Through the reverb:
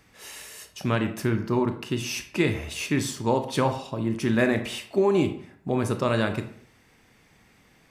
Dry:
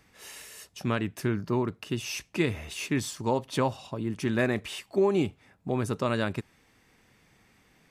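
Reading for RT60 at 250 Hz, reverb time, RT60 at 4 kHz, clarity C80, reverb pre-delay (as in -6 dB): 0.55 s, 0.60 s, 0.40 s, 14.0 dB, 23 ms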